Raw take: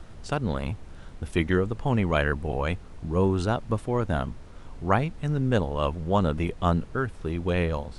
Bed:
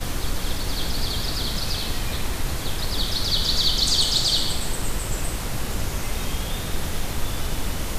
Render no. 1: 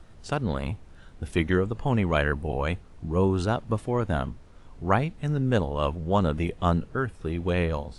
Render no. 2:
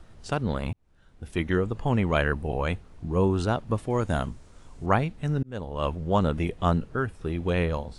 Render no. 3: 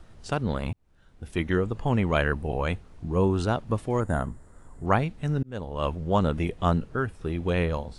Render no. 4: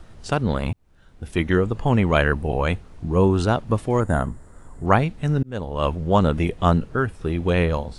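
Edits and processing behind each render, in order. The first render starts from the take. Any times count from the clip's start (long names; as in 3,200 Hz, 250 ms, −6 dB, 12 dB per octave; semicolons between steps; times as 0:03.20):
noise reduction from a noise print 6 dB
0:00.73–0:01.69: fade in; 0:03.90–0:04.86: parametric band 7,800 Hz +10.5 dB 1.2 octaves; 0:05.43–0:05.92: fade in
0:04.00–0:04.86: gain on a spectral selection 2,100–6,800 Hz −13 dB
level +5.5 dB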